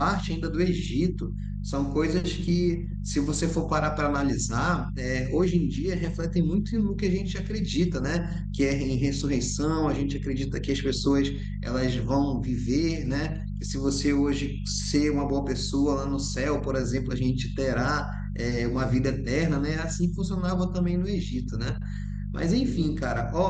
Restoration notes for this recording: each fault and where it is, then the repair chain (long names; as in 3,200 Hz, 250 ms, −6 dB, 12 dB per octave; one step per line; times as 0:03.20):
mains hum 50 Hz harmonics 4 −32 dBFS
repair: hum removal 50 Hz, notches 4